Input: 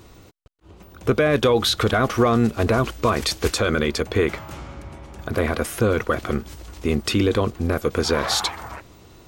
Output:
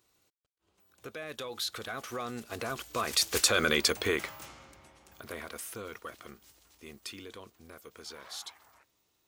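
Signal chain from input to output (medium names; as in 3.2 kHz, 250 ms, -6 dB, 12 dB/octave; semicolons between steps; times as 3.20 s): Doppler pass-by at 3.75 s, 10 m/s, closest 3.4 m; tilt EQ +3 dB/octave; trim -3.5 dB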